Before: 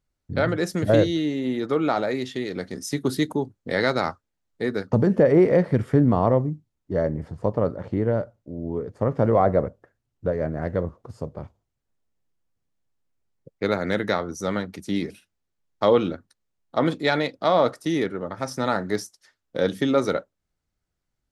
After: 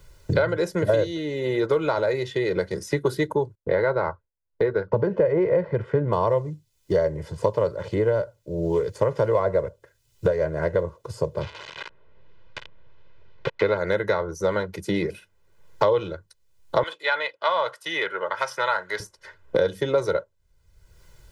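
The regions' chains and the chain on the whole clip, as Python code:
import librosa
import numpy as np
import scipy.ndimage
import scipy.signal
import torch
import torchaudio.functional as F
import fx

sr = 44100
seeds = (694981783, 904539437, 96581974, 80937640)

y = fx.chain(x, sr, fx.lowpass(hz=1500.0, slope=12),
    fx.gate_hold(open_db=-39.0, close_db=-43.0, hold_ms=71.0, range_db=-21, attack_ms=1.4, release_ms=100.0), at=(3.55, 6.13))
y = fx.chain(y, sr, fx.crossing_spikes(level_db=-25.5),
    fx.lowpass(hz=3600.0, slope=24), at=(11.41, 13.77))
y = fx.chain(y, sr, fx.highpass(hz=1100.0, slope=12),
    fx.peak_eq(hz=3100.0, db=8.5, octaves=0.39), at=(16.83, 19.0))
y = y + 0.89 * np.pad(y, (int(2.0 * sr / 1000.0), 0))[:len(y)]
y = fx.dynamic_eq(y, sr, hz=840.0, q=0.73, threshold_db=-30.0, ratio=4.0, max_db=5)
y = fx.band_squash(y, sr, depth_pct=100)
y = y * librosa.db_to_amplitude(-5.5)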